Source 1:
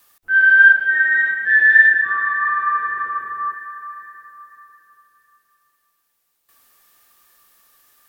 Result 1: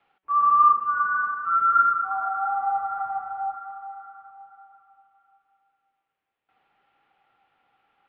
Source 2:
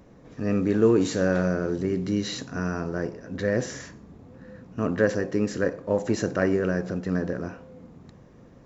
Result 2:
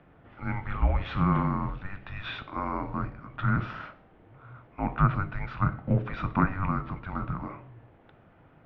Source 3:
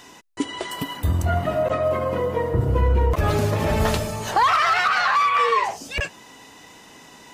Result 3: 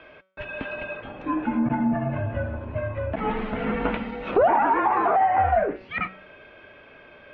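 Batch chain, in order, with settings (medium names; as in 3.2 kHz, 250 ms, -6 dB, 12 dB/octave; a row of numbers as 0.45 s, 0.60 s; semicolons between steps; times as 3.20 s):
mistuned SSB -390 Hz 530–3300 Hz; de-hum 188.8 Hz, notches 33; low-pass that closes with the level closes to 1.3 kHz, closed at -18 dBFS; peak normalisation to -9 dBFS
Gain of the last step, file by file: -4.5 dB, +4.0 dB, +0.5 dB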